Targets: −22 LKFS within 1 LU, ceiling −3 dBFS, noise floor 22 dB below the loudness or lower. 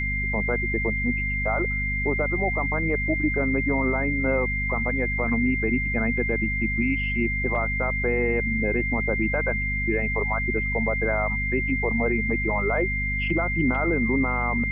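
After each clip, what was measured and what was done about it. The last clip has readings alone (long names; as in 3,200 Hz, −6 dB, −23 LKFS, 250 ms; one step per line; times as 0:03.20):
mains hum 50 Hz; hum harmonics up to 250 Hz; level of the hum −27 dBFS; interfering tone 2,100 Hz; level of the tone −26 dBFS; integrated loudness −24.0 LKFS; sample peak −11.5 dBFS; target loudness −22.0 LKFS
→ mains-hum notches 50/100/150/200/250 Hz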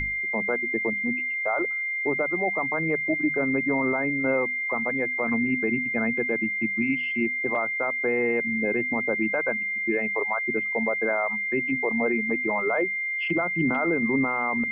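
mains hum none found; interfering tone 2,100 Hz; level of the tone −26 dBFS
→ notch filter 2,100 Hz, Q 30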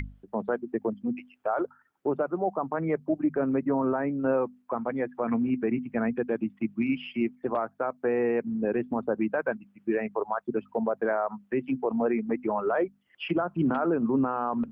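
interfering tone none found; integrated loudness −29.0 LKFS; sample peak −15.0 dBFS; target loudness −22.0 LKFS
→ level +7 dB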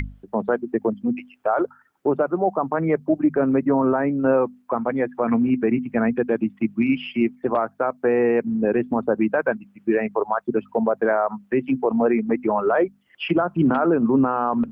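integrated loudness −22.0 LKFS; sample peak −8.0 dBFS; background noise floor −59 dBFS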